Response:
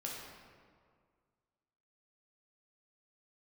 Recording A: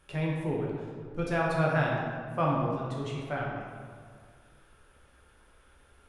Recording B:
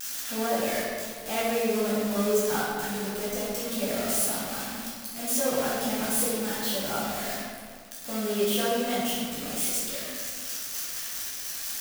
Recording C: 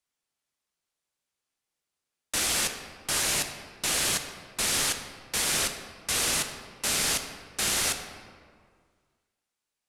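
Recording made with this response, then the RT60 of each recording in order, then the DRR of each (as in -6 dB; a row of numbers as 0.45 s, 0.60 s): A; 2.0 s, 2.0 s, 1.9 s; -3.5 dB, -9.0 dB, 6.0 dB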